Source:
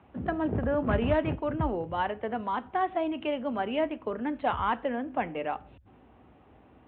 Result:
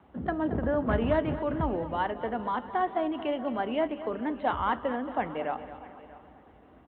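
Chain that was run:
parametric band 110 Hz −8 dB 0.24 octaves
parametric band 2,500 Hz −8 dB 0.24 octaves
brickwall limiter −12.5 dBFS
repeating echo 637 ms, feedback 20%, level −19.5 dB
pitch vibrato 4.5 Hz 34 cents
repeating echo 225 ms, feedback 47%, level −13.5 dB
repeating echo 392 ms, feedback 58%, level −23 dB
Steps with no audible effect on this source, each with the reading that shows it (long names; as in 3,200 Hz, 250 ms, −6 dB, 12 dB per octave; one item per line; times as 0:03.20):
brickwall limiter −12.5 dBFS: peak of its input −15.0 dBFS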